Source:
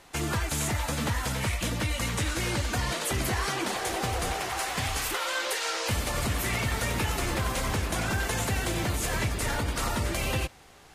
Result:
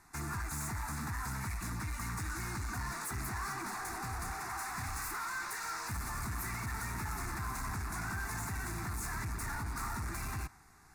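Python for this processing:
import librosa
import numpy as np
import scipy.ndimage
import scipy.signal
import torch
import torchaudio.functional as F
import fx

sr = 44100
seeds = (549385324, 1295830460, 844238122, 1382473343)

y = fx.dynamic_eq(x, sr, hz=1100.0, q=1.0, threshold_db=-47.0, ratio=4.0, max_db=4)
y = np.clip(y, -10.0 ** (-29.5 / 20.0), 10.0 ** (-29.5 / 20.0))
y = fx.fixed_phaser(y, sr, hz=1300.0, stages=4)
y = F.gain(torch.from_numpy(y), -4.5).numpy()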